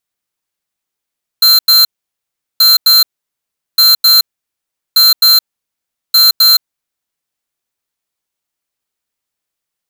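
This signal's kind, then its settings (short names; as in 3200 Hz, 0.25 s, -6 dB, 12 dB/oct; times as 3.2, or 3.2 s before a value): beep pattern square 4130 Hz, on 0.17 s, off 0.09 s, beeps 2, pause 0.75 s, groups 5, -6.5 dBFS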